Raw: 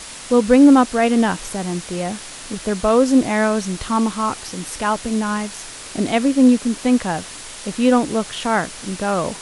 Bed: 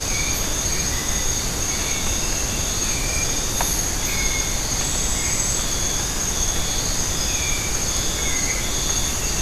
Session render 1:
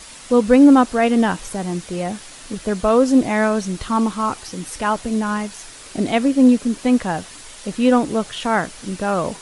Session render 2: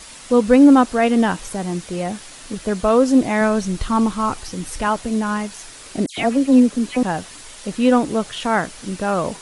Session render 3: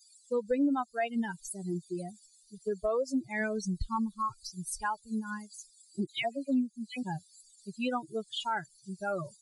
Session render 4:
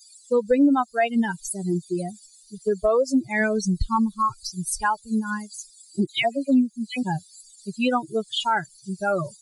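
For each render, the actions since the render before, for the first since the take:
broadband denoise 6 dB, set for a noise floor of −35 dBFS
0:03.41–0:04.88: low-shelf EQ 81 Hz +11.5 dB; 0:06.06–0:07.03: all-pass dispersion lows, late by 116 ms, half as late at 2,400 Hz
spectral dynamics exaggerated over time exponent 3; downward compressor 3 to 1, threshold −31 dBFS, peak gain reduction 16.5 dB
level +10 dB

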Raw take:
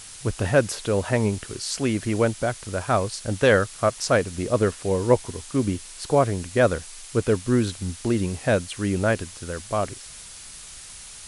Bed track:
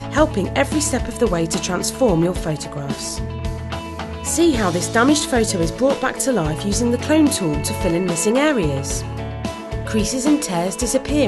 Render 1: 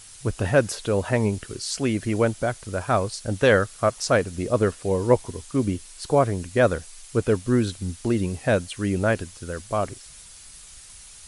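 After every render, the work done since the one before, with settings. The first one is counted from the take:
broadband denoise 6 dB, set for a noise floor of −42 dBFS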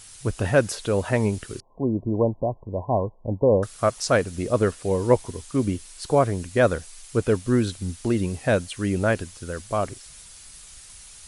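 0:01.60–0:03.63: linear-phase brick-wall low-pass 1,100 Hz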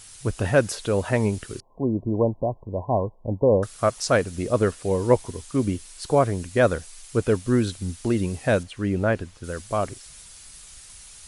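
0:08.63–0:09.44: low-pass filter 2,200 Hz 6 dB per octave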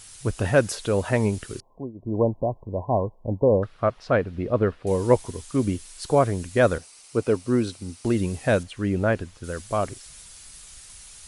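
0:01.67–0:02.19: duck −20.5 dB, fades 0.25 s
0:03.48–0:04.87: high-frequency loss of the air 360 metres
0:06.78–0:08.05: loudspeaker in its box 130–9,600 Hz, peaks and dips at 180 Hz −5 dB, 1,700 Hz −7 dB, 3,400 Hz −6 dB, 7,000 Hz −6 dB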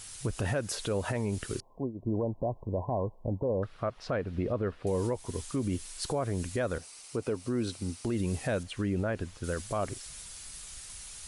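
downward compressor 4 to 1, threshold −24 dBFS, peak gain reduction 11 dB
brickwall limiter −22 dBFS, peak gain reduction 8.5 dB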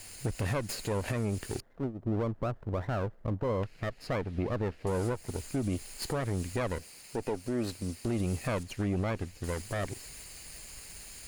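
lower of the sound and its delayed copy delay 0.42 ms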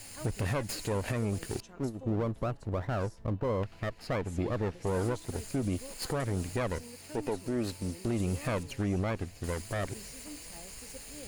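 mix in bed track −31.5 dB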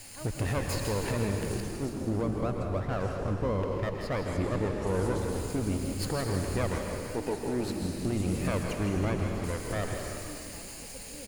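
echo with shifted repeats 161 ms, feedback 59%, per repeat −45 Hz, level −9 dB
dense smooth reverb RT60 2 s, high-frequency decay 1×, pre-delay 100 ms, DRR 3 dB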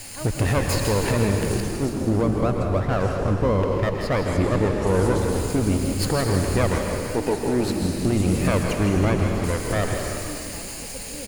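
level +9 dB

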